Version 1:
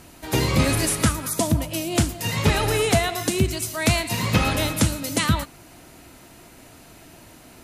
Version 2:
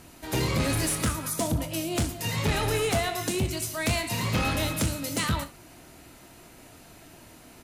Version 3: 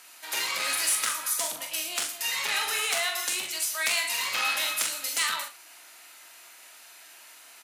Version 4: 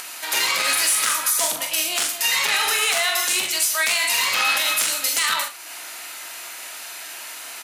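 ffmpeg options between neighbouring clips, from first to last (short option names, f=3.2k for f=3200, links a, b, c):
-filter_complex "[0:a]asoftclip=type=tanh:threshold=-16.5dB,asplit=2[a][b];[b]aecho=0:1:25|64:0.282|0.158[c];[a][c]amix=inputs=2:normalize=0,volume=-3.5dB"
-filter_complex "[0:a]highpass=1.3k,asplit=2[a][b];[b]adelay=44,volume=-6dB[c];[a][c]amix=inputs=2:normalize=0,volume=3.5dB"
-filter_complex "[0:a]asplit=2[a][b];[b]acompressor=mode=upward:threshold=-33dB:ratio=2.5,volume=1.5dB[c];[a][c]amix=inputs=2:normalize=0,alimiter=limit=-13dB:level=0:latency=1:release=41,volume=3dB"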